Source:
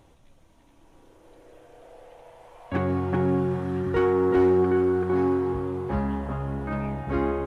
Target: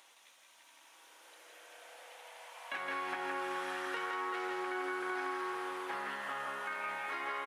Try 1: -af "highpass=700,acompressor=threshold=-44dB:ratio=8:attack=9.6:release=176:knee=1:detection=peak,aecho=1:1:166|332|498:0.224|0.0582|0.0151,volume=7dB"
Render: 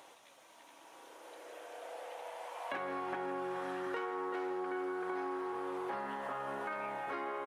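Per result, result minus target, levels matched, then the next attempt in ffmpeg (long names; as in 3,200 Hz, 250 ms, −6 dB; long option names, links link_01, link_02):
echo-to-direct −10 dB; 500 Hz band +5.5 dB
-af "highpass=700,acompressor=threshold=-44dB:ratio=8:attack=9.6:release=176:knee=1:detection=peak,aecho=1:1:166|332|498|664:0.708|0.184|0.0479|0.0124,volume=7dB"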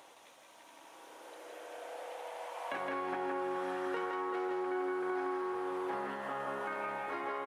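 500 Hz band +5.5 dB
-af "highpass=1600,acompressor=threshold=-44dB:ratio=8:attack=9.6:release=176:knee=1:detection=peak,aecho=1:1:166|332|498|664:0.708|0.184|0.0479|0.0124,volume=7dB"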